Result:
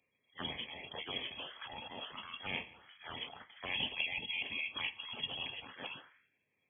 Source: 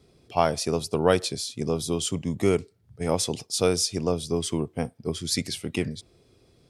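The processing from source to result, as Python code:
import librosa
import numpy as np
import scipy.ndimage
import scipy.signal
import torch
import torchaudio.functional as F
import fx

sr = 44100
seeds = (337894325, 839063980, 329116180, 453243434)

y = fx.low_shelf(x, sr, hz=440.0, db=12.0, at=(3.7, 5.64))
y = fx.spec_gate(y, sr, threshold_db=-30, keep='weak')
y = fx.rev_double_slope(y, sr, seeds[0], early_s=0.24, late_s=2.0, knee_db=-28, drr_db=10.5)
y = fx.transient(y, sr, attack_db=-7, sustain_db=11)
y = fx.echo_thinned(y, sr, ms=169, feedback_pct=31, hz=420.0, wet_db=-20.5)
y = fx.env_phaser(y, sr, low_hz=300.0, high_hz=1900.0, full_db=-43.5)
y = fx.tilt_eq(y, sr, slope=-2.0)
y = fx.freq_invert(y, sr, carrier_hz=3300)
y = scipy.signal.sosfilt(scipy.signal.butter(2, 75.0, 'highpass', fs=sr, output='sos'), y)
y = fx.band_squash(y, sr, depth_pct=100, at=(1.21, 1.65))
y = y * librosa.db_to_amplitude(10.5)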